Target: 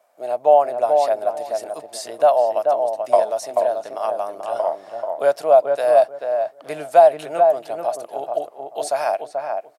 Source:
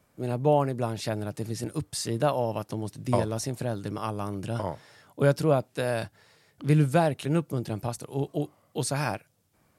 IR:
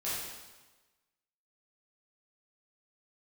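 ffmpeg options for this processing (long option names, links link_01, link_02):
-filter_complex "[0:a]highpass=frequency=660:width_type=q:width=7.6,asplit=2[link_01][link_02];[link_02]adelay=435,lowpass=frequency=1200:poles=1,volume=-3dB,asplit=2[link_03][link_04];[link_04]adelay=435,lowpass=frequency=1200:poles=1,volume=0.22,asplit=2[link_05][link_06];[link_06]adelay=435,lowpass=frequency=1200:poles=1,volume=0.22[link_07];[link_01][link_03][link_05][link_07]amix=inputs=4:normalize=0"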